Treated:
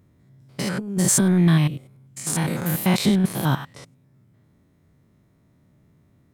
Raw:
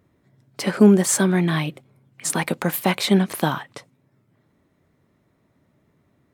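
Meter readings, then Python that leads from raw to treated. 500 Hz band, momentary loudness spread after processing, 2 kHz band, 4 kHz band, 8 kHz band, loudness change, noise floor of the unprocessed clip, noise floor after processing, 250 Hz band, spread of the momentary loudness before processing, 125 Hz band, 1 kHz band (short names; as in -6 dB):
-7.0 dB, 14 LU, -3.5 dB, -2.0 dB, +1.5 dB, -1.0 dB, -66 dBFS, -60 dBFS, -1.5 dB, 13 LU, +3.0 dB, -4.0 dB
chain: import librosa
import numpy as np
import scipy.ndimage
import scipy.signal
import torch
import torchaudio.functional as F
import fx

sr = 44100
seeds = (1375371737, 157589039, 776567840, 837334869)

y = fx.spec_steps(x, sr, hold_ms=100)
y = fx.over_compress(y, sr, threshold_db=-20.0, ratio=-0.5)
y = fx.bass_treble(y, sr, bass_db=9, treble_db=5)
y = y * librosa.db_to_amplitude(-2.5)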